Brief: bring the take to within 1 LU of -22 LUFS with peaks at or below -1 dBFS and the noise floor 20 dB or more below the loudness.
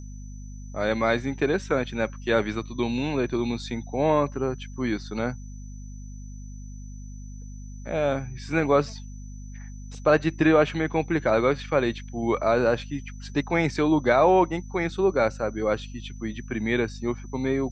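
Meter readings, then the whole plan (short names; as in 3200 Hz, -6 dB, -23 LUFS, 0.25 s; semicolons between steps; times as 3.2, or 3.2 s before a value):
hum 50 Hz; harmonics up to 250 Hz; hum level -36 dBFS; steady tone 6000 Hz; tone level -53 dBFS; loudness -25.0 LUFS; peak -6.0 dBFS; loudness target -22.0 LUFS
-> notches 50/100/150/200/250 Hz; notch 6000 Hz, Q 30; gain +3 dB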